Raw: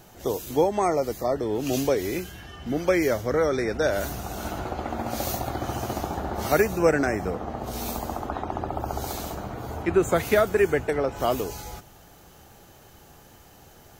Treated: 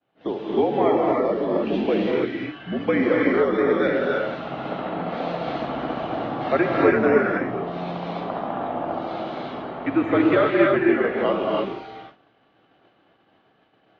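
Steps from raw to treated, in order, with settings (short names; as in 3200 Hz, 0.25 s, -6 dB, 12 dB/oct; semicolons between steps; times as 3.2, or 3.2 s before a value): mistuned SSB -60 Hz 210–3600 Hz; non-linear reverb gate 0.34 s rising, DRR -2.5 dB; expander -41 dBFS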